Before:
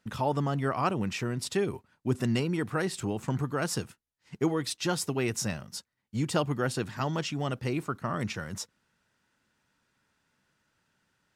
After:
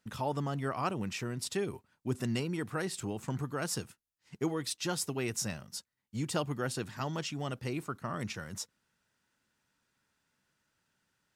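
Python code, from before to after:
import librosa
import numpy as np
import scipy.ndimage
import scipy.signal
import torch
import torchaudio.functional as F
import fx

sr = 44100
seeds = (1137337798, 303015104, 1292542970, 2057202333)

y = fx.high_shelf(x, sr, hz=4700.0, db=5.5)
y = y * librosa.db_to_amplitude(-5.5)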